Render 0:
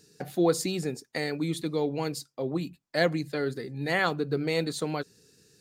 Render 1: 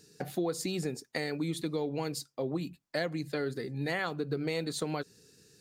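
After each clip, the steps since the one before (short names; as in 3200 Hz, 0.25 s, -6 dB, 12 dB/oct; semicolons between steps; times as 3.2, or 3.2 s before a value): compressor 5:1, threshold -29 dBFS, peak gain reduction 10 dB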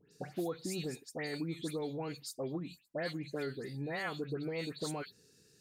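dispersion highs, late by 0.121 s, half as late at 2500 Hz; gain -5 dB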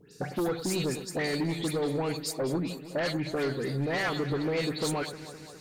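sine folder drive 7 dB, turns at -25 dBFS; echo with dull and thin repeats by turns 0.103 s, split 1600 Hz, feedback 81%, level -12 dB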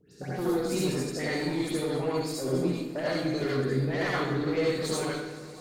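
rotary speaker horn 6.3 Hz; reverb RT60 0.75 s, pre-delay 58 ms, DRR -6.5 dB; gain -4 dB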